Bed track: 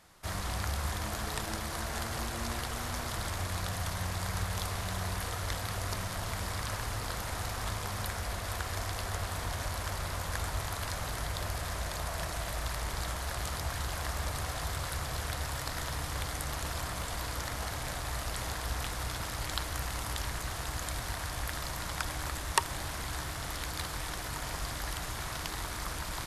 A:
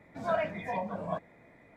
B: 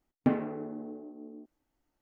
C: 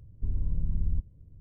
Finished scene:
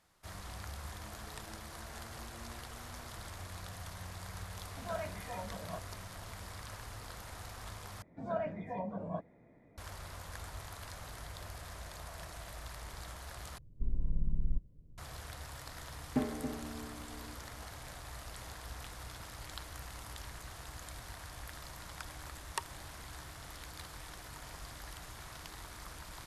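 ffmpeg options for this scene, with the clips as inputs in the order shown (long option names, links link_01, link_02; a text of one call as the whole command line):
ffmpeg -i bed.wav -i cue0.wav -i cue1.wav -i cue2.wav -filter_complex "[1:a]asplit=2[link_01][link_02];[0:a]volume=-11dB[link_03];[link_02]tiltshelf=frequency=970:gain=7.5[link_04];[3:a]equalizer=frequency=84:width=1.5:gain=-10.5[link_05];[2:a]aecho=1:1:277:0.376[link_06];[link_03]asplit=3[link_07][link_08][link_09];[link_07]atrim=end=8.024[link_10];[link_04]atrim=end=1.76,asetpts=PTS-STARTPTS,volume=-8.5dB[link_11];[link_08]atrim=start=9.776:end=13.584[link_12];[link_05]atrim=end=1.4,asetpts=PTS-STARTPTS,volume=-2dB[link_13];[link_09]atrim=start=14.976[link_14];[link_01]atrim=end=1.76,asetpts=PTS-STARTPTS,volume=-10dB,afade=type=in:duration=0.004:curve=hsin,afade=type=out:start_time=1.756:duration=0.004:curve=hsin,adelay=203301S[link_15];[link_06]atrim=end=2.01,asetpts=PTS-STARTPTS,volume=-6.5dB,afade=type=in:duration=0.004:curve=hsin,afade=type=out:start_time=2.006:duration=0.004:curve=hsin,adelay=15900[link_16];[link_10][link_11]acrossfade=duration=0.004:curve1=hsin:curve2=hsin[link_17];[link_17][link_12]acrossfade=duration=0.004:curve1=hsin:curve2=hsin[link_18];[link_18][link_13]acrossfade=duration=0.004:curve1=hsin:curve2=hsin[link_19];[link_19][link_14]acrossfade=duration=0.004:curve1=hsin:curve2=hsin[link_20];[link_20][link_15][link_16]amix=inputs=3:normalize=0" out.wav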